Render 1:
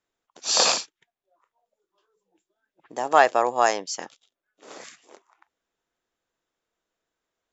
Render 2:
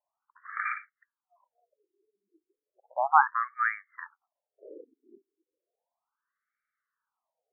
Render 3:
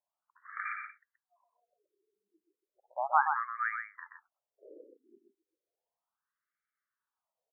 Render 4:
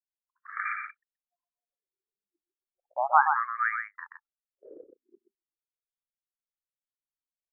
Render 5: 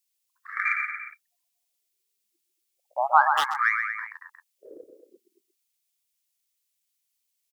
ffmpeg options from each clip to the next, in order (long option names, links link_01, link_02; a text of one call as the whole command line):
ffmpeg -i in.wav -filter_complex "[0:a]asplit=2[link_01][link_02];[link_02]asoftclip=type=tanh:threshold=-21.5dB,volume=-11.5dB[link_03];[link_01][link_03]amix=inputs=2:normalize=0,afftfilt=real='re*between(b*sr/1024,300*pow(1700/300,0.5+0.5*sin(2*PI*0.34*pts/sr))/1.41,300*pow(1700/300,0.5+0.5*sin(2*PI*0.34*pts/sr))*1.41)':imag='im*between(b*sr/1024,300*pow(1700/300,0.5+0.5*sin(2*PI*0.34*pts/sr))/1.41,300*pow(1700/300,0.5+0.5*sin(2*PI*0.34*pts/sr))*1.41)':win_size=1024:overlap=0.75" out.wav
ffmpeg -i in.wav -af "aecho=1:1:127:0.501,volume=-6dB" out.wav
ffmpeg -i in.wav -af "anlmdn=0.00251,volume=5.5dB" out.wav
ffmpeg -i in.wav -filter_complex "[0:a]asplit=2[link_01][link_02];[link_02]adelay=230,highpass=300,lowpass=3400,asoftclip=type=hard:threshold=-14.5dB,volume=-9dB[link_03];[link_01][link_03]amix=inputs=2:normalize=0,aexciter=amount=3:drive=7.7:freq=2100,volume=2.5dB" out.wav